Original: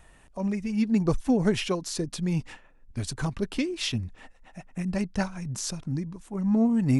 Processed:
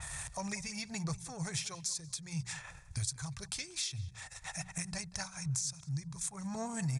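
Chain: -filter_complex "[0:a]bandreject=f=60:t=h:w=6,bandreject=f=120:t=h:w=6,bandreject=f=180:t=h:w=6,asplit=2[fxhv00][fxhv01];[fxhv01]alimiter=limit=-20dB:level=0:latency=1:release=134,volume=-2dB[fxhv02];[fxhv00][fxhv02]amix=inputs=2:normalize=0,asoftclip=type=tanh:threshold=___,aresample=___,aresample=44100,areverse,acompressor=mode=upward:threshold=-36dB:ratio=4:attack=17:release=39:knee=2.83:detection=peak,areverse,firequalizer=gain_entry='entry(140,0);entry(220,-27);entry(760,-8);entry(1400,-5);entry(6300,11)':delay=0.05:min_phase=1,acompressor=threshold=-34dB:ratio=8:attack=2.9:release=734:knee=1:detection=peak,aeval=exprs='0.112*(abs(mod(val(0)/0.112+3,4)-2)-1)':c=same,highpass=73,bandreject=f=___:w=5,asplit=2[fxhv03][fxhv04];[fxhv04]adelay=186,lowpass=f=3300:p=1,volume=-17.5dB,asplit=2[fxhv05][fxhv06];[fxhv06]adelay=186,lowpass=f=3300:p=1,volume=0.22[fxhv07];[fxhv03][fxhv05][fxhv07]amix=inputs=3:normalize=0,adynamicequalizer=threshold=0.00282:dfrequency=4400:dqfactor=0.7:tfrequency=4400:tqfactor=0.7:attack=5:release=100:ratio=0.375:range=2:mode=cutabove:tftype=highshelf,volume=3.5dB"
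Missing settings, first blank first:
-11dB, 22050, 2900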